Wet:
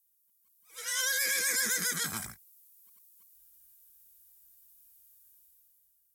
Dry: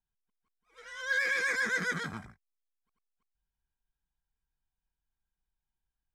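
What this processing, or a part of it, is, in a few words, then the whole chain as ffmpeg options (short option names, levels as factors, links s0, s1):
FM broadcast chain: -filter_complex "[0:a]highpass=41,dynaudnorm=f=220:g=7:m=3.98,acrossover=split=380|3400[s0][s1][s2];[s0]acompressor=threshold=0.0224:ratio=4[s3];[s1]acompressor=threshold=0.0355:ratio=4[s4];[s2]acompressor=threshold=0.00794:ratio=4[s5];[s3][s4][s5]amix=inputs=3:normalize=0,aemphasis=mode=production:type=75fm,alimiter=limit=0.1:level=0:latency=1:release=350,asoftclip=type=hard:threshold=0.0841,lowpass=f=15000:w=0.5412,lowpass=f=15000:w=1.3066,aemphasis=mode=production:type=75fm,volume=0.531"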